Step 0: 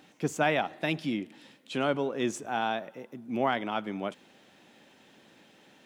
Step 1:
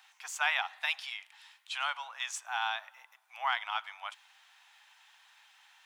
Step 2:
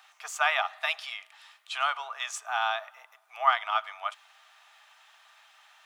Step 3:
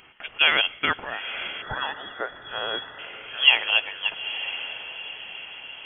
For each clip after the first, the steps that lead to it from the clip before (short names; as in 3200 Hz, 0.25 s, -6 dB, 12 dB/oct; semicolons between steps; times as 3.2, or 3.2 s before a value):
steep high-pass 840 Hz 48 dB/oct; dynamic EQ 3800 Hz, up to +3 dB, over -46 dBFS, Q 0.8
small resonant body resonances 440/640/1200 Hz, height 15 dB, ringing for 50 ms; gain +2 dB
diffused feedback echo 0.933 s, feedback 50%, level -11 dB; spectral gain 1.62–2.99, 710–2000 Hz -21 dB; inverted band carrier 4000 Hz; gain +6 dB